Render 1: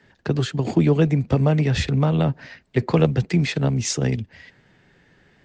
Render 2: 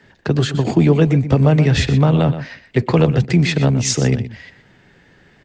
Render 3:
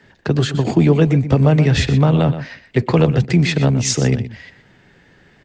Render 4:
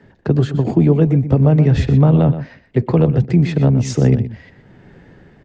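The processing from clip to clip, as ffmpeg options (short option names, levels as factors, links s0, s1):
-filter_complex "[0:a]asplit=2[s0][s1];[s1]alimiter=limit=0.251:level=0:latency=1:release=32,volume=1.19[s2];[s0][s2]amix=inputs=2:normalize=0,asplit=2[s3][s4];[s4]adelay=122.4,volume=0.251,highshelf=f=4000:g=-2.76[s5];[s3][s5]amix=inputs=2:normalize=0,volume=0.891"
-af anull
-af "tiltshelf=f=1300:g=7.5,dynaudnorm=f=150:g=7:m=1.68,volume=0.891"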